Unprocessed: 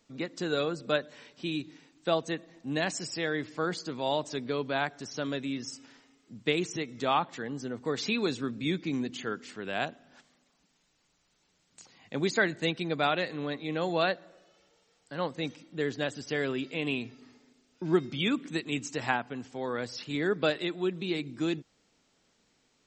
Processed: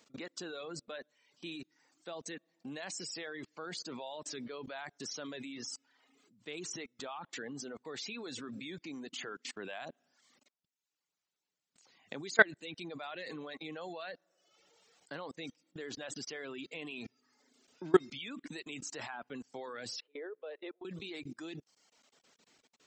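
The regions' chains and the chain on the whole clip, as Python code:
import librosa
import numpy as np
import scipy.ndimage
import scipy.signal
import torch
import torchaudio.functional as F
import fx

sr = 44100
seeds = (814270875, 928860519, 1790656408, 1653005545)

y = fx.chain(x, sr, fx.ladder_highpass(hz=410.0, resonance_pct=65),
    fx.air_absorb(metres=350.0), at=(20.0, 20.85))
y = fx.highpass(y, sr, hz=350.0, slope=6)
y = fx.level_steps(y, sr, step_db=24)
y = fx.dereverb_blind(y, sr, rt60_s=0.92)
y = F.gain(torch.from_numpy(y), 6.0).numpy()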